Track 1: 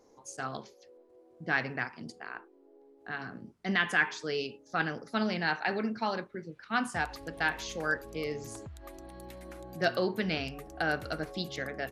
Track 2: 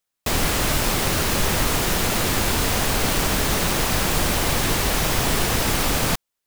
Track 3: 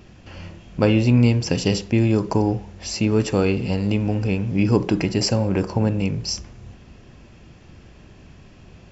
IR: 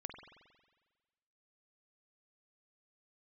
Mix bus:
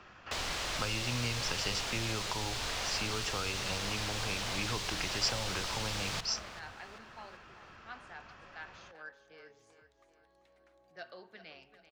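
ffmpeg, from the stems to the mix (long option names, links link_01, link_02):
-filter_complex "[0:a]adelay=1150,volume=-19dB,asplit=3[link_01][link_02][link_03];[link_02]volume=-8dB[link_04];[link_03]volume=-11dB[link_05];[1:a]adelay=50,volume=-11dB,asplit=3[link_06][link_07][link_08];[link_07]volume=-3dB[link_09];[link_08]volume=-14dB[link_10];[2:a]equalizer=frequency=1300:width=1.5:gain=13,volume=-5dB[link_11];[3:a]atrim=start_sample=2205[link_12];[link_04][link_09]amix=inputs=2:normalize=0[link_13];[link_13][link_12]afir=irnorm=-1:irlink=0[link_14];[link_05][link_10]amix=inputs=2:normalize=0,aecho=0:1:388|776|1164|1552|1940|2328:1|0.46|0.212|0.0973|0.0448|0.0206[link_15];[link_01][link_06][link_11][link_14][link_15]amix=inputs=5:normalize=0,acrossover=split=480 6500:gain=0.251 1 0.0794[link_16][link_17][link_18];[link_16][link_17][link_18]amix=inputs=3:normalize=0,acrossover=split=120|3000[link_19][link_20][link_21];[link_20]acompressor=threshold=-38dB:ratio=5[link_22];[link_19][link_22][link_21]amix=inputs=3:normalize=0"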